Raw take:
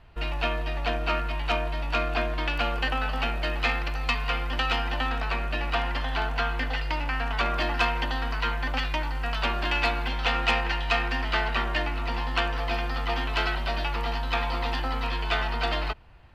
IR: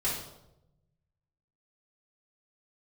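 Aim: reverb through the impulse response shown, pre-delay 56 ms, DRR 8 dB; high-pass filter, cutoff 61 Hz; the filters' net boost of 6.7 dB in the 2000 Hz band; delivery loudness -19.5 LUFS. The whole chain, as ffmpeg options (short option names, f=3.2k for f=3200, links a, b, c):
-filter_complex "[0:a]highpass=61,equalizer=f=2k:t=o:g=8.5,asplit=2[a][b];[1:a]atrim=start_sample=2205,adelay=56[c];[b][c]afir=irnorm=-1:irlink=0,volume=-15dB[d];[a][d]amix=inputs=2:normalize=0,volume=3.5dB"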